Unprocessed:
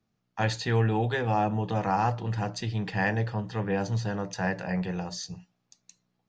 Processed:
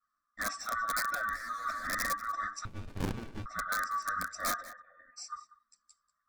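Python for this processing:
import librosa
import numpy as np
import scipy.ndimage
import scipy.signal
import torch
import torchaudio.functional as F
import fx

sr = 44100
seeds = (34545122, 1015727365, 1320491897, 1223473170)

y = fx.band_swap(x, sr, width_hz=1000)
y = fx.peak_eq(y, sr, hz=440.0, db=-11.0, octaves=0.72)
y = fx.leveller(y, sr, passes=5, at=(1.34, 1.86))
y = fx.over_compress(y, sr, threshold_db=-26.0, ratio=-1.0)
y = fx.formant_cascade(y, sr, vowel='e', at=(4.6, 5.16), fade=0.02)
y = fx.chorus_voices(y, sr, voices=4, hz=0.8, base_ms=11, depth_ms=2.1, mix_pct=65)
y = (np.mod(10.0 ** (19.5 / 20.0) * y + 1.0, 2.0) - 1.0) / 10.0 ** (19.5 / 20.0)
y = fx.fixed_phaser(y, sr, hz=580.0, stages=8)
y = y + 10.0 ** (-18.5 / 20.0) * np.pad(y, (int(190 * sr / 1000.0), 0))[:len(y)]
y = fx.running_max(y, sr, window=65, at=(2.65, 3.46))
y = y * 10.0 ** (-3.5 / 20.0)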